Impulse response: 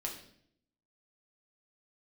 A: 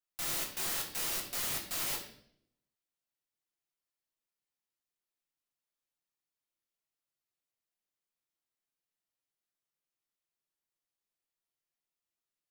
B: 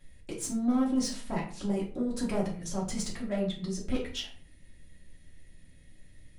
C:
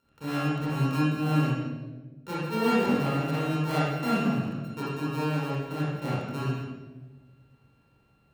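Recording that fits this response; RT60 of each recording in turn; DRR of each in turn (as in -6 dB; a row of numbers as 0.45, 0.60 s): A; 0.65, 0.45, 1.3 s; -1.0, -4.5, -9.0 dB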